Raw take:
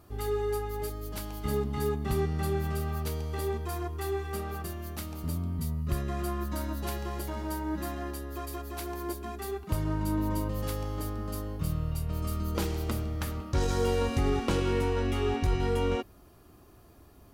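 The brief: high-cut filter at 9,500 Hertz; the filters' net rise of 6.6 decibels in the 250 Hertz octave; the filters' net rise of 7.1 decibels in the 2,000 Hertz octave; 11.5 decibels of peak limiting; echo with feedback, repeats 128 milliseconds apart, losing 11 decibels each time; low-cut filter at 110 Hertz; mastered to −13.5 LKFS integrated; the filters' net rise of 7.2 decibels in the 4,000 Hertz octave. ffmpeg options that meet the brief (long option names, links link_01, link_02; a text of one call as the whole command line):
ffmpeg -i in.wav -af "highpass=110,lowpass=9500,equalizer=frequency=250:width_type=o:gain=9,equalizer=frequency=2000:width_type=o:gain=7,equalizer=frequency=4000:width_type=o:gain=7,alimiter=limit=-23dB:level=0:latency=1,aecho=1:1:128|256|384:0.282|0.0789|0.0221,volume=18.5dB" out.wav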